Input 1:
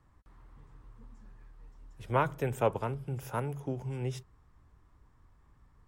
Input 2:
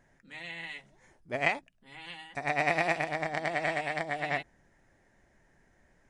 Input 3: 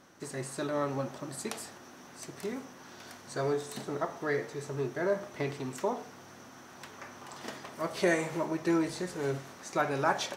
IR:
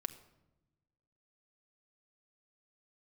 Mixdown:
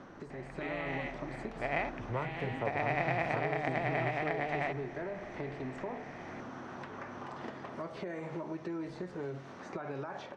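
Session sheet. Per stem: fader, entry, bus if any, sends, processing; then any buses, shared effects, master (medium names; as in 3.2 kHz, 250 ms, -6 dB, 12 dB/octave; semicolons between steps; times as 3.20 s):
-3.0 dB, 0.00 s, bus A, no send, none
-10.0 dB, 0.30 s, no bus, no send, spectral levelling over time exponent 0.4
-5.0 dB, 0.00 s, bus A, no send, peak limiter -24.5 dBFS, peak gain reduction 10.5 dB; three bands compressed up and down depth 70%
bus A: 0.0 dB, compression 2:1, threshold -43 dBFS, peak gain reduction 10.5 dB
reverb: none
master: level rider gain up to 5 dB; tape spacing loss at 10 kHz 27 dB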